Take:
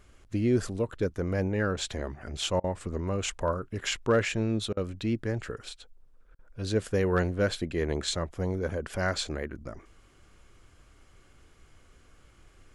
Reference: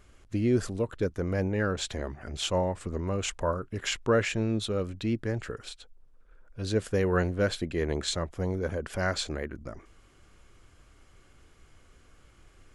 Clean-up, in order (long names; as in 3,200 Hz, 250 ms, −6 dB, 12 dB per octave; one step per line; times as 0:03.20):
clipped peaks rebuilt −16 dBFS
repair the gap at 0:02.60/0:04.73/0:06.35, 39 ms